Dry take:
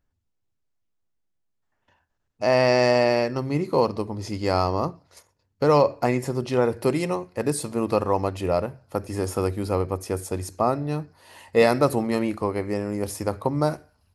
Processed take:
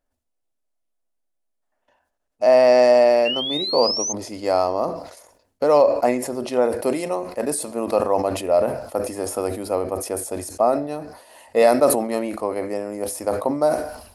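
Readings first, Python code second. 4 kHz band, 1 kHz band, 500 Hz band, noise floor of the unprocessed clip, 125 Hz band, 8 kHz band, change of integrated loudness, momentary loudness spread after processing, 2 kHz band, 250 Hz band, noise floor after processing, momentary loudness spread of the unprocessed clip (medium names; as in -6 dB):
+8.5 dB, +2.5 dB, +5.0 dB, -75 dBFS, -10.5 dB, +8.5 dB, +3.5 dB, 12 LU, -1.0 dB, -0.5 dB, -75 dBFS, 10 LU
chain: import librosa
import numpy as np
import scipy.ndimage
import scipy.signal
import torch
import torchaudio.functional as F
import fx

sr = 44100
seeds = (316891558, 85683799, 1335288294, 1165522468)

y = fx.peak_eq(x, sr, hz=120.0, db=-14.5, octaves=1.6)
y = fx.comb_fb(y, sr, f0_hz=250.0, decay_s=0.32, harmonics='all', damping=0.0, mix_pct=30)
y = fx.spec_paint(y, sr, seeds[0], shape='rise', start_s=3.25, length_s=0.88, low_hz=2700.0, high_hz=6400.0, level_db=-27.0)
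y = fx.graphic_eq_15(y, sr, hz=(250, 630, 10000), db=(6, 11, 8))
y = fx.sustainer(y, sr, db_per_s=77.0)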